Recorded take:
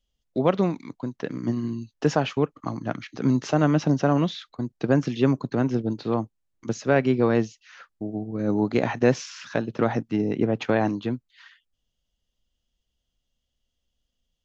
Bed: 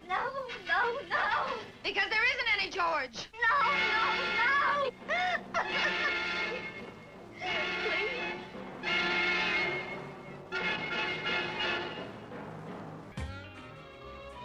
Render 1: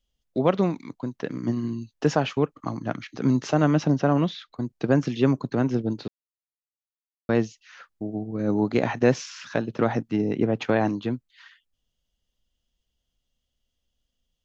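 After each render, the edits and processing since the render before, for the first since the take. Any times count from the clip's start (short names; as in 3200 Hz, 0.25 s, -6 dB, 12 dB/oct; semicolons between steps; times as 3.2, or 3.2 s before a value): 3.87–4.52 air absorption 76 m; 6.08–7.29 mute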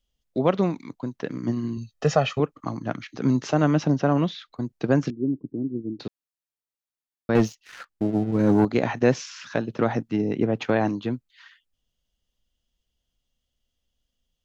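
1.77–2.4 comb 1.6 ms, depth 75%; 5.1–6 ladder low-pass 360 Hz, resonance 60%; 7.35–8.65 sample leveller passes 2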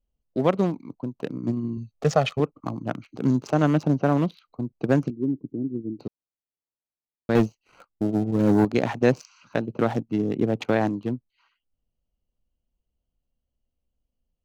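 Wiener smoothing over 25 samples; high shelf 5500 Hz +9 dB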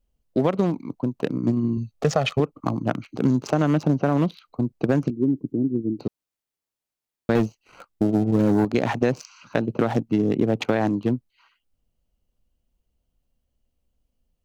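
in parallel at +0.5 dB: limiter -14 dBFS, peak gain reduction 7.5 dB; on the sum: compressor, threshold -16 dBFS, peak gain reduction 7 dB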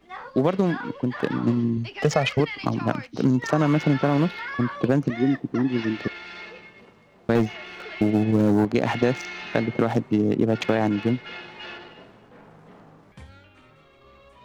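add bed -6 dB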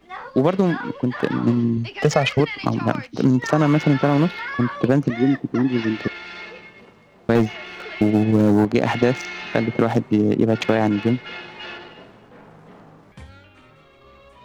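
gain +3.5 dB; limiter -2 dBFS, peak gain reduction 1 dB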